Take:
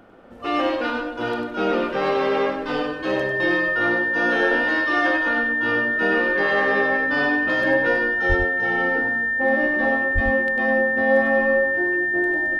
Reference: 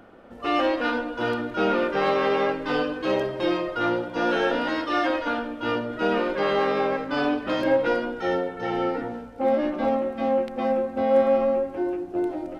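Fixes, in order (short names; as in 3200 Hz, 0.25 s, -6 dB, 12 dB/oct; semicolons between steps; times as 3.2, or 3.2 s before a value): notch 1800 Hz, Q 30; 8.28–8.4 HPF 140 Hz 24 dB/oct; 10.14–10.26 HPF 140 Hz 24 dB/oct; inverse comb 98 ms -6 dB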